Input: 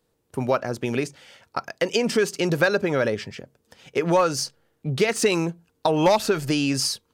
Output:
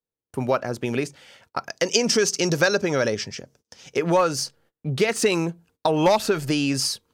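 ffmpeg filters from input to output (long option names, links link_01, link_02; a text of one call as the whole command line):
ffmpeg -i in.wav -filter_complex "[0:a]asettb=1/sr,asplit=3[link_01][link_02][link_03];[link_01]atrim=end=1.694[link_04];[link_02]atrim=start=1.69:end=3.97,asetpts=PTS-STARTPTS,afade=type=in:duration=0.004:curve=qsin,afade=type=out:start_time=2.276:duration=0.004:curve=qsin,equalizer=frequency=5800:width_type=o:width=0.63:gain=13.5[link_05];[link_03]atrim=start=3.966[link_06];[link_04][link_05]acrossfade=duration=0.004:curve1=hsin:curve2=qsin[link_07];[link_07][link_06]acrossfade=duration=0.004:curve1=qsin:curve2=hsin,agate=range=-24dB:threshold=-56dB:ratio=16:detection=peak" out.wav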